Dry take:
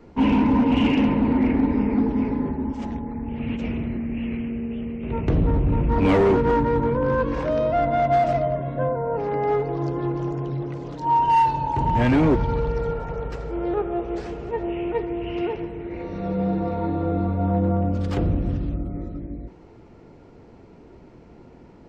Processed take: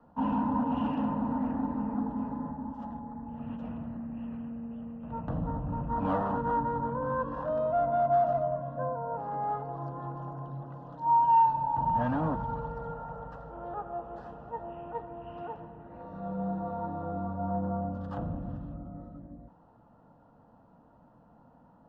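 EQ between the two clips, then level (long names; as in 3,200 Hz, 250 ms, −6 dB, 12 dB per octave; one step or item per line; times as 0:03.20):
three-way crossover with the lows and the highs turned down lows −14 dB, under 150 Hz, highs −23 dB, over 2,600 Hz
phaser with its sweep stopped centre 920 Hz, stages 4
−4.0 dB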